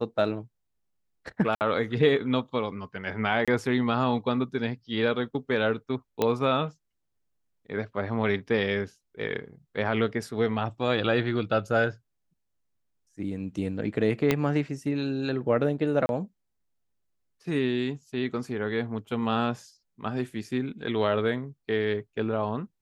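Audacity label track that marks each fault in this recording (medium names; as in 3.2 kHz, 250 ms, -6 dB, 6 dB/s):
1.550000	1.610000	dropout 59 ms
3.450000	3.480000	dropout 26 ms
6.220000	6.220000	pop -11 dBFS
14.310000	14.310000	pop -9 dBFS
16.060000	16.090000	dropout 31 ms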